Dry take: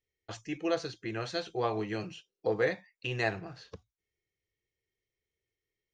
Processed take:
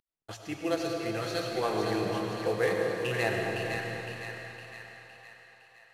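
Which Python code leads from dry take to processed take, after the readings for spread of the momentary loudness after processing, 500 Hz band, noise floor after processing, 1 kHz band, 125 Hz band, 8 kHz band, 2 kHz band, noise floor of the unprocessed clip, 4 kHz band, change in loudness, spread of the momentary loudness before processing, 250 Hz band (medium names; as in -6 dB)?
18 LU, +3.5 dB, -60 dBFS, +4.0 dB, +3.5 dB, no reading, +4.0 dB, under -85 dBFS, +3.5 dB, +2.5 dB, 15 LU, +4.0 dB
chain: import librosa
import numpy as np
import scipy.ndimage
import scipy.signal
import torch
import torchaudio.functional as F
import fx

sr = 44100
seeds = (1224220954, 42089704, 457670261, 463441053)

y = fx.cvsd(x, sr, bps=64000)
y = fx.echo_split(y, sr, split_hz=830.0, low_ms=219, high_ms=511, feedback_pct=52, wet_db=-5.0)
y = fx.rev_freeverb(y, sr, rt60_s=3.4, hf_ratio=0.9, predelay_ms=55, drr_db=1.0)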